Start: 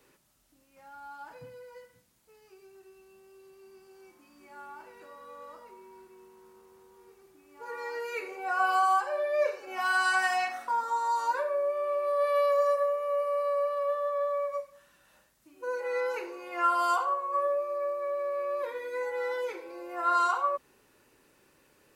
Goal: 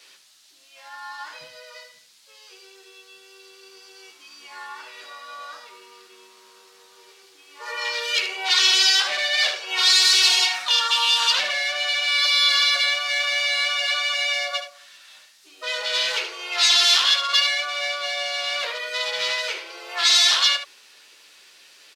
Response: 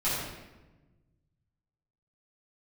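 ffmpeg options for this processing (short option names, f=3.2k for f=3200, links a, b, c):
-filter_complex "[0:a]apsyclip=20dB,aeval=exprs='0.299*(abs(mod(val(0)/0.299+3,4)-2)-1)':c=same,asplit=2[a][b];[b]asetrate=55563,aresample=44100,atempo=0.793701,volume=-6dB[c];[a][c]amix=inputs=2:normalize=0,bandpass=f=4.2k:t=q:w=1.7:csg=0,asplit=2[d][e];[e]aecho=0:1:13|75:0.398|0.335[f];[d][f]amix=inputs=2:normalize=0,volume=2dB"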